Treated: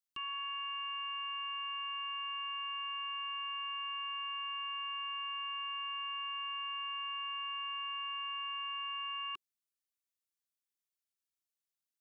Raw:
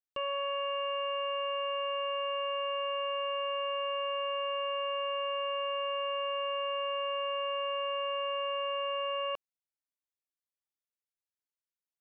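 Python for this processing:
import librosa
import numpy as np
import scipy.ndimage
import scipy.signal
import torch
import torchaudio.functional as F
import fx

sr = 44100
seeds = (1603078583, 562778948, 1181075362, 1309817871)

y = scipy.signal.sosfilt(scipy.signal.ellip(3, 1.0, 70, [370.0, 1100.0], 'bandstop', fs=sr, output='sos'), x)
y = fx.high_shelf(y, sr, hz=2300.0, db=9.5)
y = F.gain(torch.from_numpy(y), -6.5).numpy()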